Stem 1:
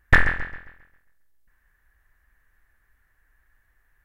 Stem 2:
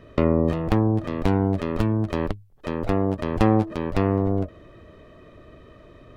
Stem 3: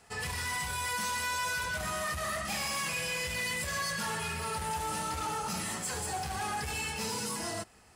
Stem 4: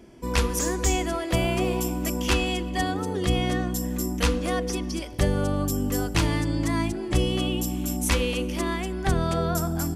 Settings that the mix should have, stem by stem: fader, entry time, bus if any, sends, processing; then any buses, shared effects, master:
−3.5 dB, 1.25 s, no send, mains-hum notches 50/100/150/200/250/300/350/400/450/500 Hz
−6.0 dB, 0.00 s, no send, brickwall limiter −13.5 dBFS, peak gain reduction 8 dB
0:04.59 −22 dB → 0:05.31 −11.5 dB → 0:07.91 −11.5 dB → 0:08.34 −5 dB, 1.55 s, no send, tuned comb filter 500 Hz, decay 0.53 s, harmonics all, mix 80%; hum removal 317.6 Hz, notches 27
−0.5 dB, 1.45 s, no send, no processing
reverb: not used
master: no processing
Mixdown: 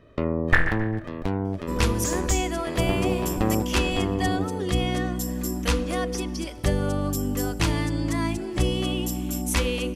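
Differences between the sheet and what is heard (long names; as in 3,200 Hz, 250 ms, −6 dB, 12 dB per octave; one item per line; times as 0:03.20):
stem 1: entry 1.25 s → 0.40 s
stem 2: missing brickwall limiter −13.5 dBFS, peak gain reduction 8 dB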